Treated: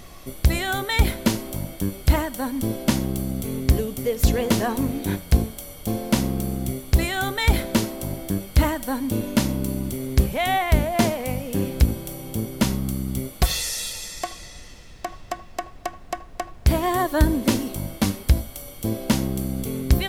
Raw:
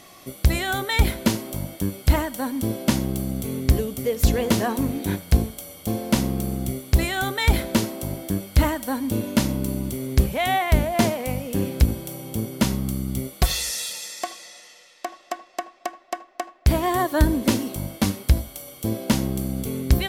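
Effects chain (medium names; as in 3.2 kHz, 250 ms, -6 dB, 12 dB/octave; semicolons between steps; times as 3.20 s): added noise brown -42 dBFS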